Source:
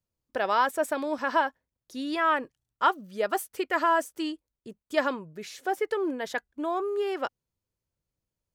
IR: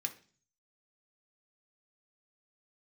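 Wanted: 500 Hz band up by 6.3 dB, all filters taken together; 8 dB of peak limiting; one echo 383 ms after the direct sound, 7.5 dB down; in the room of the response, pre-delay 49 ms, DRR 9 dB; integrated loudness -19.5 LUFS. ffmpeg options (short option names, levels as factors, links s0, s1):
-filter_complex "[0:a]equalizer=f=500:t=o:g=8.5,alimiter=limit=0.188:level=0:latency=1,aecho=1:1:383:0.422,asplit=2[s0][s1];[1:a]atrim=start_sample=2205,adelay=49[s2];[s1][s2]afir=irnorm=-1:irlink=0,volume=0.355[s3];[s0][s3]amix=inputs=2:normalize=0,volume=2.11"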